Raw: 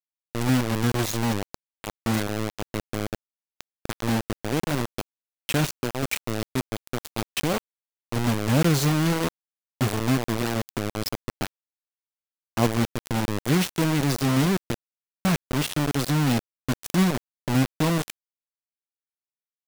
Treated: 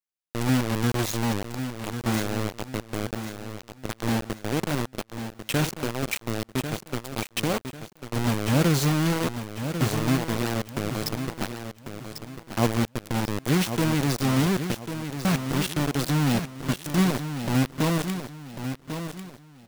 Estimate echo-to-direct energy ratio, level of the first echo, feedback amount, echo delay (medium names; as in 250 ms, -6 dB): -8.5 dB, -9.0 dB, 33%, 1095 ms